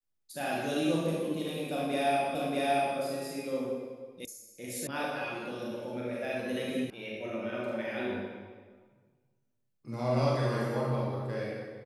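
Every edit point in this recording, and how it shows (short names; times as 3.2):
2.35 repeat of the last 0.63 s
4.25 sound cut off
4.87 sound cut off
6.9 sound cut off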